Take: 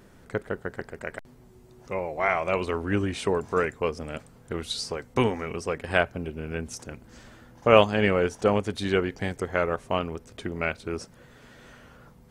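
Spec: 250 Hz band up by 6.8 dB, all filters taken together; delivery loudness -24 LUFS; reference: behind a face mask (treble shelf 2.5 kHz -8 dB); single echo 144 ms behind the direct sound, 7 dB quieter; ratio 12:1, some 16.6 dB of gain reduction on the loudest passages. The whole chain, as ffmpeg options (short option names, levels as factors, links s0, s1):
-af "equalizer=f=250:t=o:g=9,acompressor=threshold=0.0562:ratio=12,highshelf=f=2500:g=-8,aecho=1:1:144:0.447,volume=2.51"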